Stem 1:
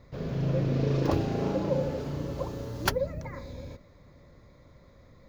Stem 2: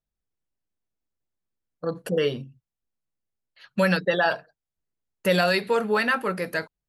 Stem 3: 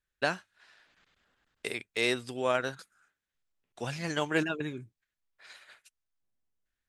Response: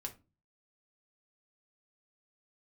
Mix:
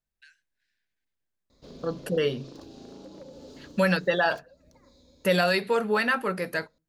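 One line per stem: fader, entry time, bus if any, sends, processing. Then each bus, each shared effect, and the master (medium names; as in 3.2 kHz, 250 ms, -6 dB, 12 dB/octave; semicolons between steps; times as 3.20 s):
3.47 s -9 dB -> 4.25 s -18 dB, 1.50 s, no send, ten-band graphic EQ 125 Hz -12 dB, 250 Hz +7 dB, 2 kHz -8 dB, 4 kHz +11 dB, 8 kHz +11 dB; compression 16:1, threshold -32 dBFS, peak gain reduction 17 dB; wavefolder -28 dBFS
-2.5 dB, 0.00 s, send -15.5 dB, none
-10.5 dB, 0.00 s, no send, rippled Chebyshev high-pass 1.5 kHz, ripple 3 dB; compression 2:1, threshold -49 dBFS, peak gain reduction 12 dB; auto duck -20 dB, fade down 1.65 s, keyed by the second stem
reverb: on, RT60 0.30 s, pre-delay 4 ms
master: none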